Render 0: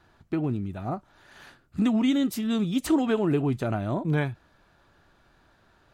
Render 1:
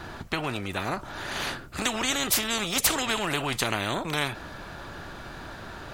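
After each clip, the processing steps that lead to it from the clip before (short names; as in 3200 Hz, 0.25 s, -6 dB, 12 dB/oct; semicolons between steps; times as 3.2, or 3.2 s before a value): spectral compressor 4:1; gain +4.5 dB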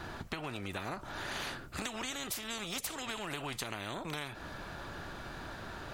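compressor 12:1, threshold -31 dBFS, peak gain reduction 14 dB; gain -4 dB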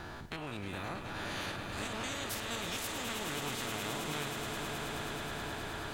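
stepped spectrum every 50 ms; swelling echo 0.106 s, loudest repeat 8, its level -10 dB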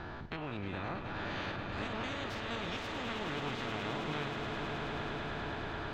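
air absorption 220 m; gain +2 dB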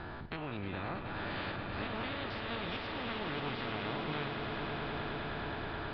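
downsampling 11025 Hz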